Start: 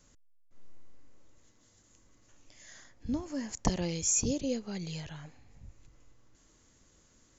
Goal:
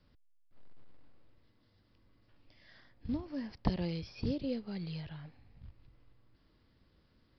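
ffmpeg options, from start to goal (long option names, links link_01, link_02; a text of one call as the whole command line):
ffmpeg -i in.wav -filter_complex "[0:a]equalizer=frequency=100:width=0.46:gain=5.5,acrossover=split=520|1900[link_01][link_02][link_03];[link_01]acrusher=bits=6:mode=log:mix=0:aa=0.000001[link_04];[link_04][link_02][link_03]amix=inputs=3:normalize=0,aresample=11025,aresample=44100,volume=-5.5dB" out.wav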